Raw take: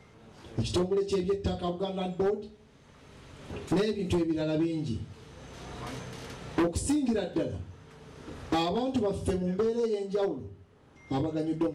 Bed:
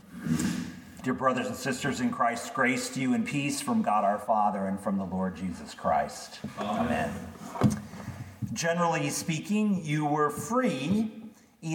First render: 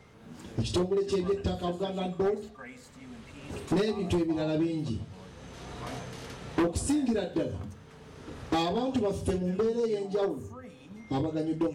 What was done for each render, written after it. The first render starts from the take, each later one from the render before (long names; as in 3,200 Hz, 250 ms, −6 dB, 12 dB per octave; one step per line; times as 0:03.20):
mix in bed −20.5 dB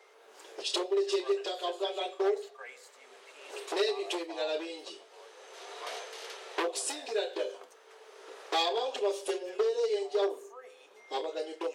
dynamic equaliser 3,600 Hz, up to +6 dB, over −52 dBFS, Q 0.82
Chebyshev high-pass filter 390 Hz, order 5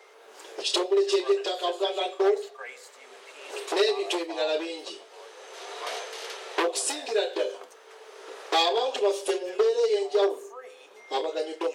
level +6 dB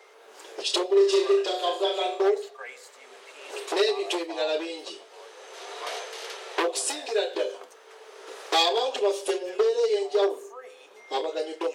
0:00.86–0:02.23: flutter between parallel walls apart 6.1 metres, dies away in 0.38 s
0:05.89–0:07.35: Butterworth high-pass 270 Hz
0:08.27–0:08.89: high-shelf EQ 4,200 Hz +5.5 dB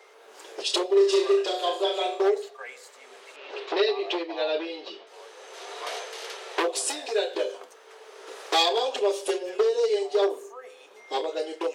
0:03.36–0:05.07: low-pass filter 4,500 Hz 24 dB per octave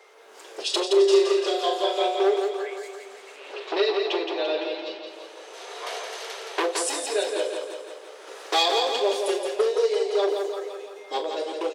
double-tracking delay 41 ms −12 dB
repeating echo 170 ms, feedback 57%, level −5.5 dB